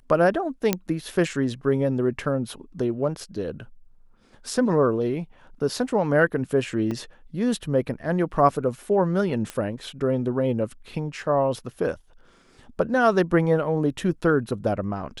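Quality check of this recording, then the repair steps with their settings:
0.73 pop -6 dBFS
6.91 gap 4.3 ms
9.5 pop -16 dBFS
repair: de-click; interpolate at 6.91, 4.3 ms

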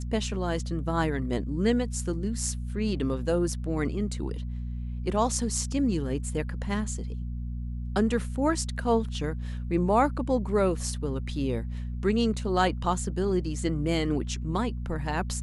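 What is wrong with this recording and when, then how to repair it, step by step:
hum 60 Hz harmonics 4 -33 dBFS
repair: de-hum 60 Hz, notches 4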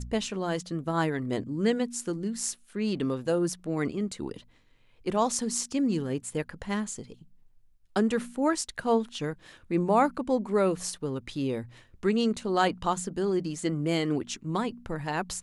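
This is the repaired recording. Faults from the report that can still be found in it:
none

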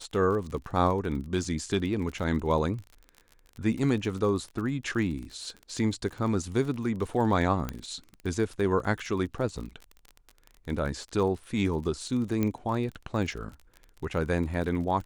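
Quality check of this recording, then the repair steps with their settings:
crackle 32/s -35 dBFS
7.69 pop -17 dBFS
12.43 pop -15 dBFS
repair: de-click

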